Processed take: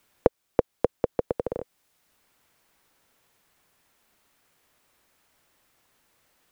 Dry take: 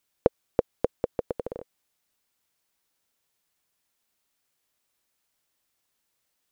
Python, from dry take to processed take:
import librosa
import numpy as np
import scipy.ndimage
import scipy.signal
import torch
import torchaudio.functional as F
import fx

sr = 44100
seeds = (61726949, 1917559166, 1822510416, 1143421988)

y = fx.band_squash(x, sr, depth_pct=40)
y = F.gain(torch.from_numpy(y), 3.0).numpy()